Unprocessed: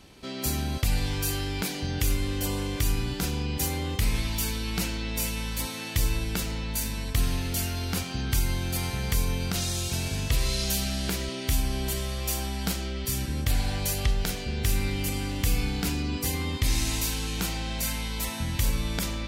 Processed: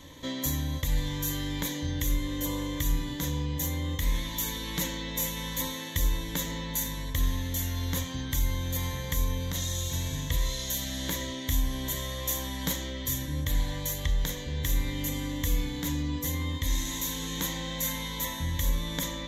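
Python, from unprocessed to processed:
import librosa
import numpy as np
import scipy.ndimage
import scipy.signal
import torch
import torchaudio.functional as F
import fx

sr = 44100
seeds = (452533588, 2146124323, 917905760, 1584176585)

y = fx.ripple_eq(x, sr, per_octave=1.1, db=14)
y = fx.rider(y, sr, range_db=10, speed_s=0.5)
y = y * 10.0 ** (-5.0 / 20.0)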